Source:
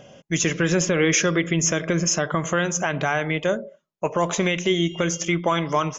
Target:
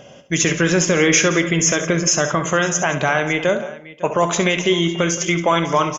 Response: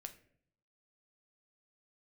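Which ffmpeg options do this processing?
-filter_complex "[0:a]aecho=1:1:66|172|554:0.266|0.158|0.119,asplit=2[a][b];[1:a]atrim=start_sample=2205,lowshelf=f=200:g=-8[c];[b][c]afir=irnorm=-1:irlink=0,volume=6.5dB[d];[a][d]amix=inputs=2:normalize=0,volume=-1.5dB"

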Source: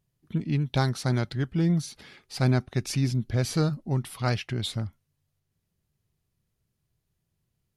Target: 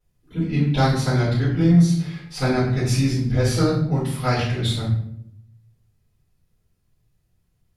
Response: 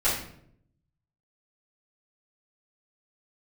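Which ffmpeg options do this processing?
-filter_complex "[1:a]atrim=start_sample=2205,asetrate=40572,aresample=44100[a];[0:a][a]afir=irnorm=-1:irlink=0,volume=-6dB"

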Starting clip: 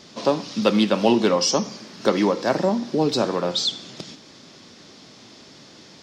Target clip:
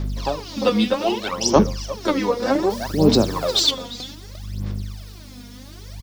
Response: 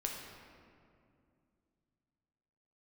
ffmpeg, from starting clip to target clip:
-filter_complex "[0:a]aeval=exprs='val(0)+0.0251*(sin(2*PI*50*n/s)+sin(2*PI*2*50*n/s)/2+sin(2*PI*3*50*n/s)/3+sin(2*PI*4*50*n/s)/4+sin(2*PI*5*50*n/s)/5)':c=same,asettb=1/sr,asplit=3[a][b][c];[a]atrim=end=0.944[d];[b]atrim=start=0.94:end=1.56,asetpts=PTS-STARTPTS,afade=t=in:d=0.004:c=qsin,afade=t=out:st=0.616:d=0.004:c=qsin,lowshelf=f=300:g=-11.5[e];[c]atrim=start=1.556[f];[d][e]acrossfade=d=0.004:c1=hsin:c2=qsin[g];[g][f]acrossfade=d=0.004:c1=qsin:c2=hsin,acrusher=bits=7:mix=0:aa=0.000001,asplit=2[h][i];[i]adelay=349.9,volume=-8dB,highshelf=f=4k:g=-7.87[j];[h][j]amix=inputs=2:normalize=0,aphaser=in_gain=1:out_gain=1:delay=4.2:decay=0.79:speed=0.64:type=sinusoidal,asettb=1/sr,asplit=3[k][l][m];[k]atrim=end=2.704[n];[l]atrim=start=2.7:end=3.71,asetpts=PTS-STARTPTS,afade=t=in:d=0.004:c=qsin,afade=t=out:st=1.006:d=0.004:c=qsin,highshelf=f=4.2k:g=10[o];[m]atrim=start=3.706[p];[n][o]acrossfade=d=0.004:c1=hsin:c2=qsin[q];[q][p]acrossfade=d=0.004:c1=qsin:c2=hsin,volume=-4.5dB"

